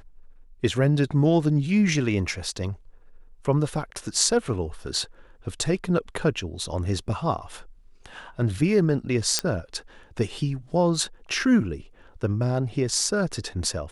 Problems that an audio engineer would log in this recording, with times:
0:09.39: click −6 dBFS

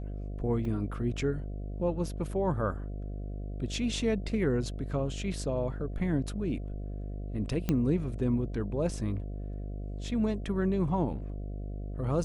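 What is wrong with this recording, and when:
mains buzz 50 Hz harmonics 14 −37 dBFS
0:00.65: drop-out 2.2 ms
0:07.69: click −15 dBFS

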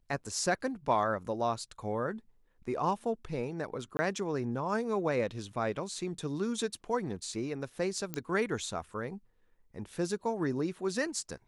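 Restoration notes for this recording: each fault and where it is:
0:03.97–0:03.99: drop-out 20 ms
0:08.14: click −18 dBFS

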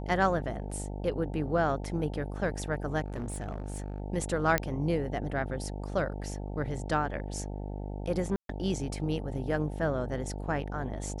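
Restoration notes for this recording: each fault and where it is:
mains buzz 50 Hz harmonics 18 −37 dBFS
0:03.06–0:04.00: clipping −31 dBFS
0:04.58: click −11 dBFS
0:08.36–0:08.49: drop-out 132 ms

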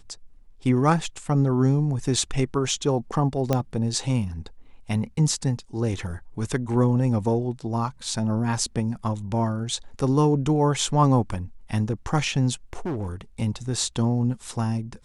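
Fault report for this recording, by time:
0:03.53: click −9 dBFS
0:12.73–0:13.13: clipping −24.5 dBFS

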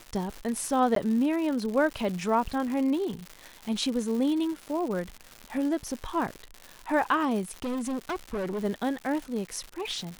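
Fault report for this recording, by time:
surface crackle 230 per second −33 dBFS
0:00.95–0:00.96: drop-out
0:07.45–0:08.65: clipping −28 dBFS

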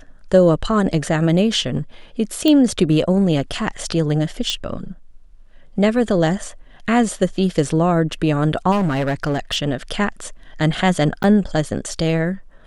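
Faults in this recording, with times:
0:02.48: click −5 dBFS
0:04.50: click −7 dBFS
0:08.71–0:09.56: clipping −15.5 dBFS
0:11.23–0:11.24: drop-out 9.1 ms

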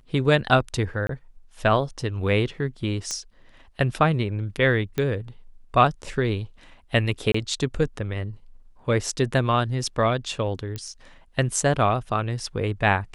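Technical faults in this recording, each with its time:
0:01.07–0:01.09: drop-out 23 ms
0:03.11: click −15 dBFS
0:04.98: click −13 dBFS
0:07.32–0:07.34: drop-out 24 ms
0:10.76: click −18 dBFS

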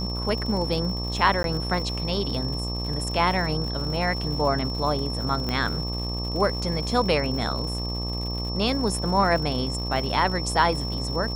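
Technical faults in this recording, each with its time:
mains buzz 60 Hz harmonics 20 −30 dBFS
surface crackle 150 per second −33 dBFS
whistle 5,400 Hz −32 dBFS
0:01.43–0:01.44: drop-out
0:05.49: click −14 dBFS

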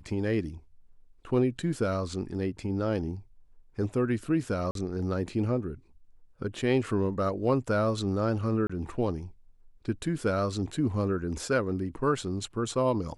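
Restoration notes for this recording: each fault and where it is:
0:04.71–0:04.75: drop-out 42 ms
0:08.67–0:08.70: drop-out 25 ms

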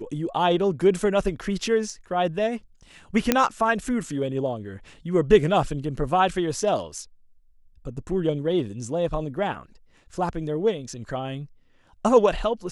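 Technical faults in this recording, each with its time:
0:03.32: click −3 dBFS

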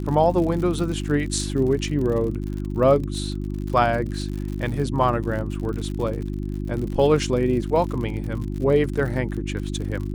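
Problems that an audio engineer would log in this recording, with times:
surface crackle 70 per second −30 dBFS
mains hum 50 Hz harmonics 7 −28 dBFS

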